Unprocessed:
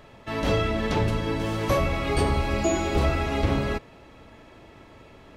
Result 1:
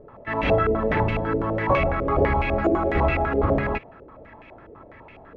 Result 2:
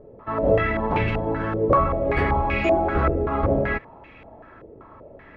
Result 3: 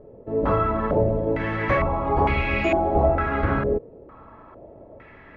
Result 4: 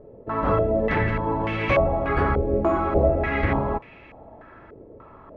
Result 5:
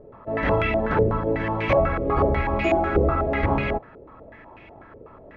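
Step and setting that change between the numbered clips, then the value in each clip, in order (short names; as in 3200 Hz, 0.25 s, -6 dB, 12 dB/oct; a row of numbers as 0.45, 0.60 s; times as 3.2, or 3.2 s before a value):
stepped low-pass, rate: 12, 5.2, 2.2, 3.4, 8.1 Hz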